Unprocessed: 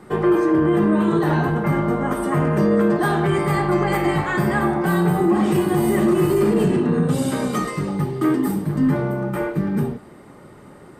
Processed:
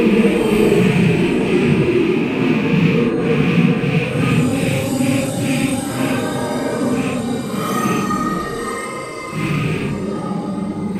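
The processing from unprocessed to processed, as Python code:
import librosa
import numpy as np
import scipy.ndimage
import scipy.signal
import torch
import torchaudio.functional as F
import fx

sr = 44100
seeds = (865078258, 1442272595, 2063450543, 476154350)

y = fx.rattle_buzz(x, sr, strikes_db=-21.0, level_db=-15.0)
y = fx.vibrato(y, sr, rate_hz=13.0, depth_cents=5.3)
y = fx.paulstretch(y, sr, seeds[0], factor=7.6, window_s=0.05, from_s=6.54)
y = y * librosa.db_to_amplitude(3.0)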